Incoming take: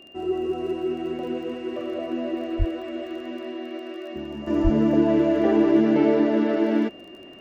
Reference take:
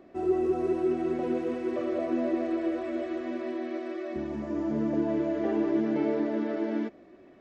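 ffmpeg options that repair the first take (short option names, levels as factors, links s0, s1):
-filter_complex "[0:a]adeclick=t=4,bandreject=f=2800:w=30,asplit=3[s0][s1][s2];[s0]afade=t=out:st=2.58:d=0.02[s3];[s1]highpass=f=140:w=0.5412,highpass=f=140:w=1.3066,afade=t=in:st=2.58:d=0.02,afade=t=out:st=2.7:d=0.02[s4];[s2]afade=t=in:st=2.7:d=0.02[s5];[s3][s4][s5]amix=inputs=3:normalize=0,asplit=3[s6][s7][s8];[s6]afade=t=out:st=4.63:d=0.02[s9];[s7]highpass=f=140:w=0.5412,highpass=f=140:w=1.3066,afade=t=in:st=4.63:d=0.02,afade=t=out:st=4.75:d=0.02[s10];[s8]afade=t=in:st=4.75:d=0.02[s11];[s9][s10][s11]amix=inputs=3:normalize=0,asetnsamples=n=441:p=0,asendcmd='4.47 volume volume -8.5dB',volume=1"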